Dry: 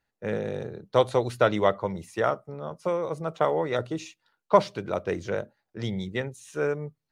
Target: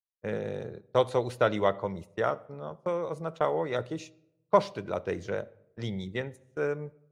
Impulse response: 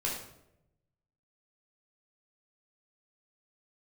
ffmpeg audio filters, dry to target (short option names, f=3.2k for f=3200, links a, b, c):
-filter_complex "[0:a]agate=range=-30dB:threshold=-38dB:ratio=16:detection=peak,asplit=2[a][b];[1:a]atrim=start_sample=2205,lowpass=5.3k[c];[b][c]afir=irnorm=-1:irlink=0,volume=-21.5dB[d];[a][d]amix=inputs=2:normalize=0,volume=-4dB"